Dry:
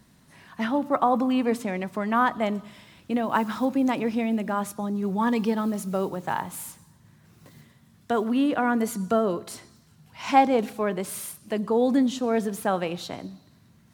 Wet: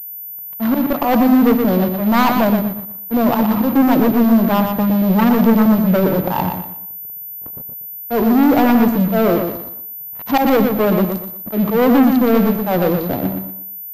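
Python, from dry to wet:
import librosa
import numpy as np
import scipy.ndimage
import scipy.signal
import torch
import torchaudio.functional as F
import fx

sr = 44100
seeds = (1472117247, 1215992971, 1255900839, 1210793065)

y = fx.wiener(x, sr, points=25)
y = scipy.signal.sosfilt(scipy.signal.butter(4, 41.0, 'highpass', fs=sr, output='sos'), y)
y = fx.peak_eq(y, sr, hz=2300.0, db=-14.0, octaves=1.1)
y = fx.notch(y, sr, hz=400.0, q=12.0)
y = fx.auto_swell(y, sr, attack_ms=129.0)
y = fx.leveller(y, sr, passes=5)
y = fx.echo_feedback(y, sr, ms=120, feedback_pct=30, wet_db=-6)
y = fx.pwm(y, sr, carrier_hz=14000.0)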